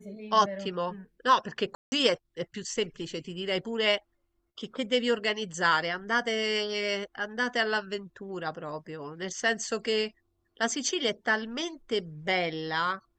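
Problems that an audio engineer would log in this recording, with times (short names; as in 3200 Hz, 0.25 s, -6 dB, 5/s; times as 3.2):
1.75–1.92 gap 0.17 s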